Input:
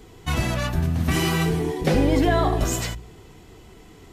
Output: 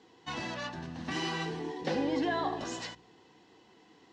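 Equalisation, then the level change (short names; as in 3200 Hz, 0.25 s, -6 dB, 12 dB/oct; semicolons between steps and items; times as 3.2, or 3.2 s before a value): speaker cabinet 360–5100 Hz, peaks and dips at 410 Hz -9 dB, 640 Hz -9 dB, 1300 Hz -10 dB, 2300 Hz -10 dB, 3400 Hz -5 dB, 4800 Hz -3 dB; -3.5 dB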